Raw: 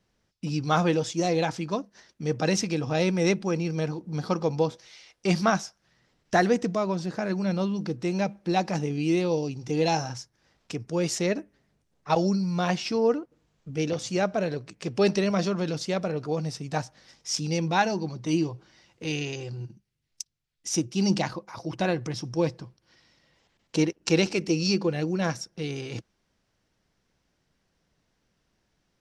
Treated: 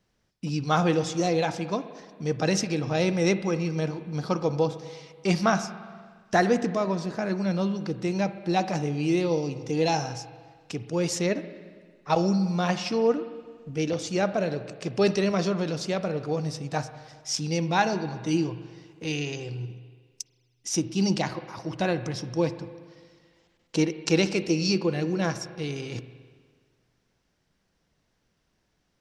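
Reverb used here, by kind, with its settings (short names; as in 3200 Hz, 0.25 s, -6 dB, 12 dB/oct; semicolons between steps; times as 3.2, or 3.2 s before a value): spring tank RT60 1.7 s, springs 41/57 ms, chirp 25 ms, DRR 11.5 dB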